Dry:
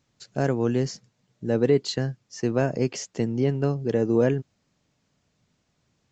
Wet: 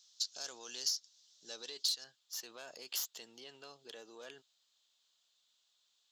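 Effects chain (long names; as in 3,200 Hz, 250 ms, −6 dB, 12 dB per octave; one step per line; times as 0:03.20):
stylus tracing distortion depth 0.086 ms
parametric band 5,600 Hz +9.5 dB 0.8 octaves, from 0:02.04 −8 dB
brickwall limiter −20 dBFS, peak gain reduction 10 dB
high-pass filter 1,300 Hz 12 dB per octave
high shelf with overshoot 2,800 Hz +8.5 dB, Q 3
downward compressor 6 to 1, threshold −27 dBFS, peak gain reduction 11.5 dB
level −5 dB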